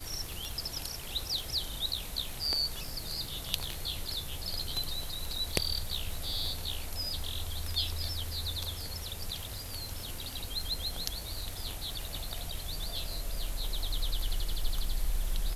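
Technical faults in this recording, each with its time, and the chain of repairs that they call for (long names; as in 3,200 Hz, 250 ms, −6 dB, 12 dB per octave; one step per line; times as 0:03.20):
surface crackle 59 per second −37 dBFS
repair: click removal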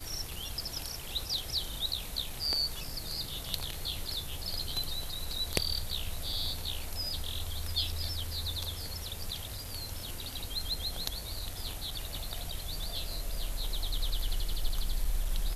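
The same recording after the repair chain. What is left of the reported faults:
none of them is left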